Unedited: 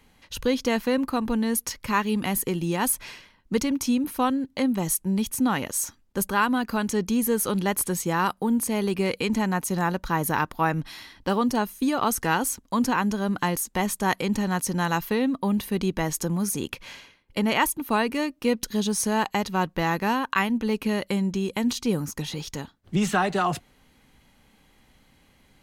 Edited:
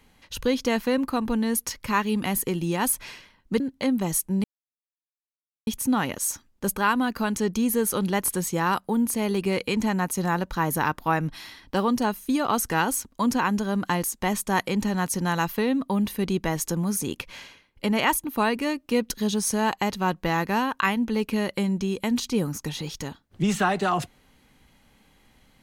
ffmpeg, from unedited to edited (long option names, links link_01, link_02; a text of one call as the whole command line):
ffmpeg -i in.wav -filter_complex "[0:a]asplit=3[link_01][link_02][link_03];[link_01]atrim=end=3.602[link_04];[link_02]atrim=start=4.358:end=5.2,asetpts=PTS-STARTPTS,afade=type=out:start_time=0.838:duration=0.004:curve=hsin,apad=pad_dur=1.23[link_05];[link_03]atrim=start=5.2,asetpts=PTS-STARTPTS,afade=type=in:duration=0.004:curve=hsin[link_06];[link_05][link_06]concat=n=2:v=0:a=1[link_07];[link_04][link_07]acrossfade=duration=0.004:curve1=hsin:curve2=hsin" out.wav